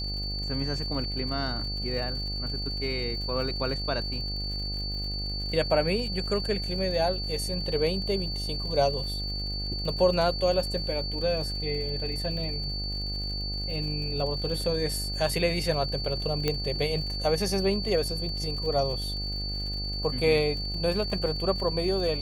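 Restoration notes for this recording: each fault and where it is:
mains buzz 50 Hz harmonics 17 −34 dBFS
surface crackle 110 per second −38 dBFS
whistle 4,500 Hz −33 dBFS
0:16.48: click −12 dBFS

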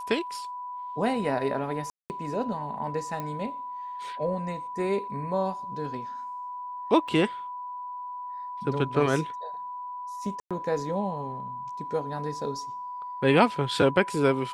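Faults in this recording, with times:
whistle 990 Hz −34 dBFS
0:01.90–0:02.10: drop-out 199 ms
0:03.20: click −20 dBFS
0:07.08: drop-out 4.1 ms
0:10.40–0:10.51: drop-out 106 ms

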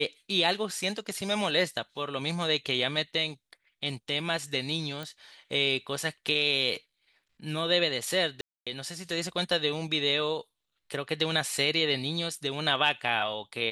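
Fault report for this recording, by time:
0:05.03: click
0:08.41–0:08.67: drop-out 256 ms

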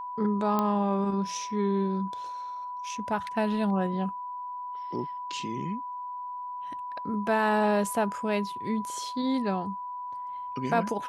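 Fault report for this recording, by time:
whistle 990 Hz −34 dBFS
0:00.59: click −14 dBFS

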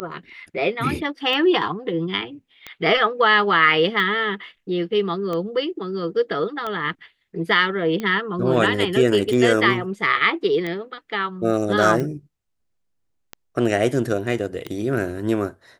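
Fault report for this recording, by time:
scratch tick 45 rpm −15 dBFS

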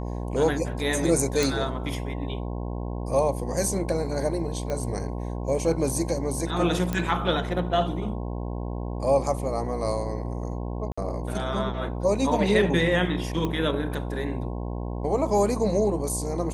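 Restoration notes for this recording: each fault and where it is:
mains buzz 60 Hz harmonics 18 −31 dBFS
0:01.43: click
0:04.70: click −18 dBFS
0:06.93: click −13 dBFS
0:10.92–0:10.97: drop-out 55 ms
0:13.45: click −16 dBFS

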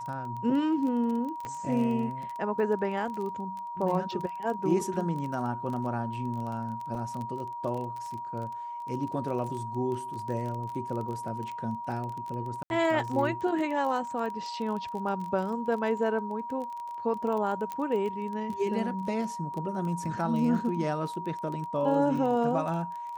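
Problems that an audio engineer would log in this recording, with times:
surface crackle 21 per second −34 dBFS
whistle 950 Hz −35 dBFS
0:01.45: click −24 dBFS
0:06.95: drop-out 4 ms
0:12.63–0:12.70: drop-out 71 ms
0:17.72: click −21 dBFS

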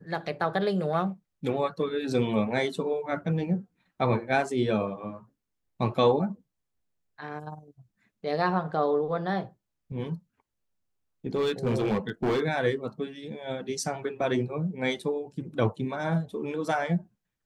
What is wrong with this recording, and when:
0:11.35–0:12.43: clipping −22 dBFS

